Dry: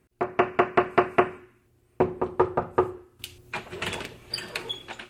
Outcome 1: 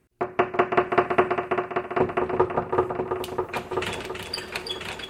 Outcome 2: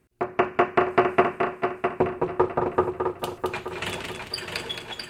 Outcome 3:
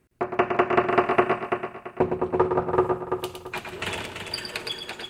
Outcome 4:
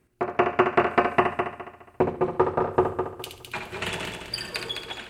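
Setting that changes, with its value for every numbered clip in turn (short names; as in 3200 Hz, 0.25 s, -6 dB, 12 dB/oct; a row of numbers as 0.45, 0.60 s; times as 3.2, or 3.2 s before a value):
multi-head echo, time: 329, 219, 112, 69 ms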